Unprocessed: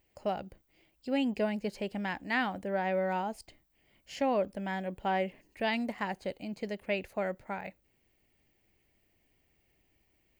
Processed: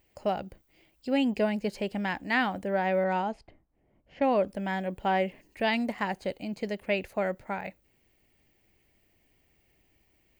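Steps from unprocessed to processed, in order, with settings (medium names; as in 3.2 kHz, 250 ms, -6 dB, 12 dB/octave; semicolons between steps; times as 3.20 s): 3.04–4.48 s: level-controlled noise filter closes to 770 Hz, open at -26.5 dBFS; trim +4 dB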